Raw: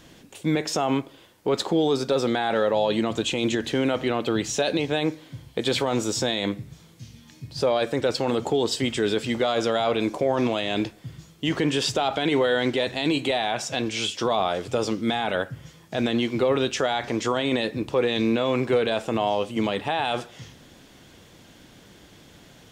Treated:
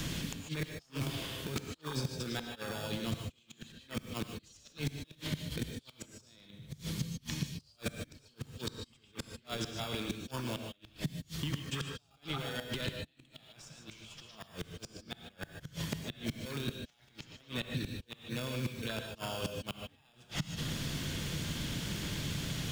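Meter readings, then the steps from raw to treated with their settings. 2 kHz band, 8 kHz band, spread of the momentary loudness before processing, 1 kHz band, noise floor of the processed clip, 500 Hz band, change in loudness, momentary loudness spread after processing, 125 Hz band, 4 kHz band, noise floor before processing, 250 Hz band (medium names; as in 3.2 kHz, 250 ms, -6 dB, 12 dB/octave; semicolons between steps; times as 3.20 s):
-13.5 dB, -10.0 dB, 7 LU, -20.0 dB, -67 dBFS, -21.5 dB, -15.0 dB, 13 LU, -5.5 dB, -12.0 dB, -52 dBFS, -15.0 dB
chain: in parallel at -6 dB: sample-and-hold 22×; on the sum: band-stop 760 Hz, Q 12; compressor with a negative ratio -32 dBFS, ratio -1; peaking EQ 540 Hz -12.5 dB 2.8 oct; on a send: repeats whose band climbs or falls 111 ms, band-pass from 3.6 kHz, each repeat -1.4 oct, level -3 dB; on the sum: inverted gate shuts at -25 dBFS, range -42 dB; peaking EQ 150 Hz +6 dB 0.38 oct; gated-style reverb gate 170 ms rising, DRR 5.5 dB; three bands compressed up and down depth 70%; trim +3 dB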